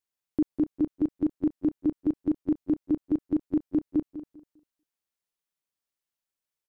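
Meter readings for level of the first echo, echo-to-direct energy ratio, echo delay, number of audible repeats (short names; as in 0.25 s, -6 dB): -13.0 dB, -12.0 dB, 0.199 s, 4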